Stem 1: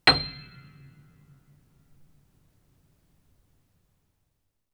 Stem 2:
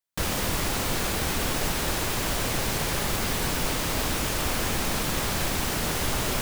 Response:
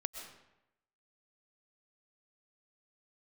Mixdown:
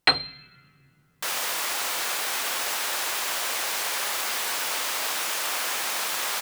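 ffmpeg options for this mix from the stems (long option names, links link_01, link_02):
-filter_complex "[0:a]lowshelf=frequency=250:gain=-11,volume=-1dB[link_01];[1:a]highpass=820,adelay=1050,volume=2dB[link_02];[link_01][link_02]amix=inputs=2:normalize=0"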